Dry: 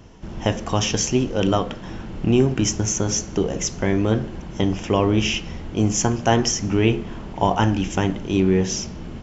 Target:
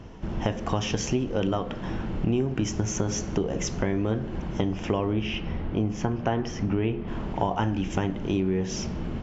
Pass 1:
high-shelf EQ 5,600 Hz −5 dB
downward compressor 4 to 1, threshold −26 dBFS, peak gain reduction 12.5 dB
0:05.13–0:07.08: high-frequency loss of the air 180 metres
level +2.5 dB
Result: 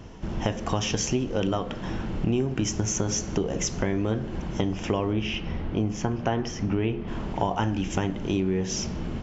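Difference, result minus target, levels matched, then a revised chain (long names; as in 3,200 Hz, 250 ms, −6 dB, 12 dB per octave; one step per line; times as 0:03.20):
8,000 Hz band +4.0 dB
high-shelf EQ 5,600 Hz −15 dB
downward compressor 4 to 1, threshold −26 dBFS, peak gain reduction 12.5 dB
0:05.13–0:07.08: high-frequency loss of the air 180 metres
level +2.5 dB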